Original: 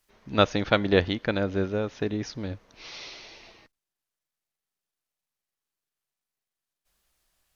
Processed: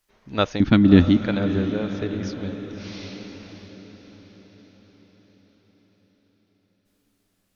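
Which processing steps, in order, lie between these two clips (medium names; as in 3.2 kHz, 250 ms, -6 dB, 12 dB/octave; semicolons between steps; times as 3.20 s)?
0.60–1.17 s: resonant low shelf 370 Hz +11 dB, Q 3; echo that smears into a reverb 597 ms, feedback 52%, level -10 dB; trim -1 dB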